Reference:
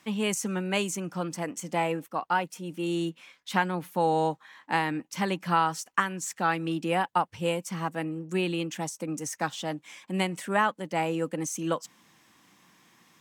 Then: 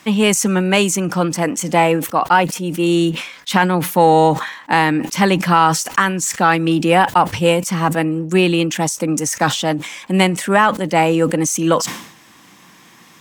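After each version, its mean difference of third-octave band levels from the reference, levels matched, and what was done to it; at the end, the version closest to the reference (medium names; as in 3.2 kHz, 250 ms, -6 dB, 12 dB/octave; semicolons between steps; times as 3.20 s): 3.0 dB: in parallel at -10.5 dB: saturation -21 dBFS, distortion -13 dB; on the sum: loudness maximiser +13 dB; decay stretcher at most 84 dB/s; trim -1 dB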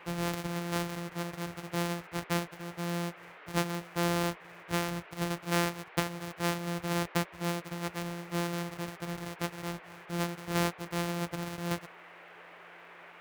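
12.0 dB: sorted samples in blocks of 256 samples; band noise 350–2400 Hz -47 dBFS; high-pass 42 Hz; trim -5 dB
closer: first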